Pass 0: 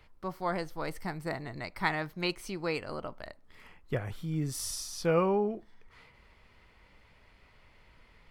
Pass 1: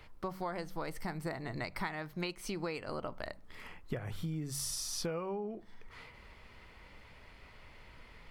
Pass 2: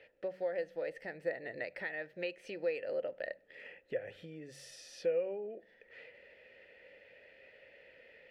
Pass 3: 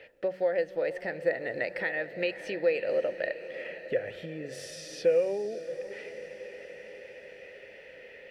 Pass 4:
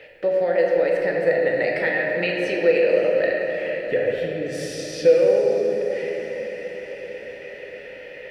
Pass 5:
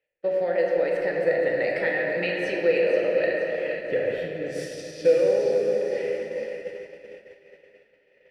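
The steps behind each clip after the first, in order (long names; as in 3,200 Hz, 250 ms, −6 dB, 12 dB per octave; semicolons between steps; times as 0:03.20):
hum removal 47.03 Hz, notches 4; downward compressor 16 to 1, threshold −39 dBFS, peak gain reduction 19 dB; level +5 dB
formant filter e; level +10.5 dB
feedback delay with all-pass diffusion 580 ms, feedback 60%, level −13 dB; level +8.5 dB
rectangular room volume 160 cubic metres, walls hard, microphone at 0.53 metres; level +6 dB
echo with a time of its own for lows and highs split 500 Hz, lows 638 ms, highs 476 ms, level −10 dB; downward expander −23 dBFS; level −4 dB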